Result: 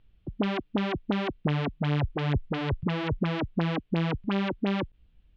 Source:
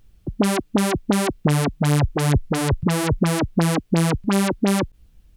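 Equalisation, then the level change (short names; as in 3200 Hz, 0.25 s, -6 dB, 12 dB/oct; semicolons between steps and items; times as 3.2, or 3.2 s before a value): ladder low-pass 3900 Hz, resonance 40%; air absorption 100 m; 0.0 dB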